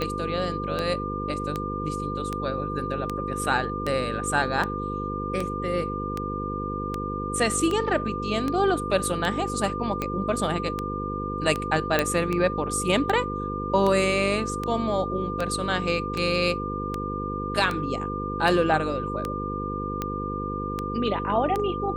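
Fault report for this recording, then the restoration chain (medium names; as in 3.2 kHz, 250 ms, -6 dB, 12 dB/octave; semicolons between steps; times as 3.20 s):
buzz 50 Hz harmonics 10 -32 dBFS
tick 78 rpm -14 dBFS
whine 1.2 kHz -31 dBFS
11.99 s: pop -7 dBFS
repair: de-click; de-hum 50 Hz, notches 10; band-stop 1.2 kHz, Q 30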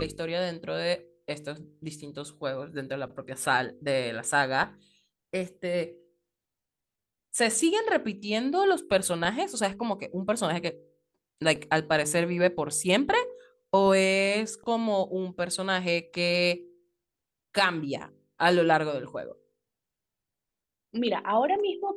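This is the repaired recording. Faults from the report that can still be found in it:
nothing left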